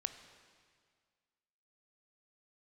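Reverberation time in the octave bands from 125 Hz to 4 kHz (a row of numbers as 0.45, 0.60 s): 2.0, 1.9, 1.9, 1.9, 1.8, 1.8 s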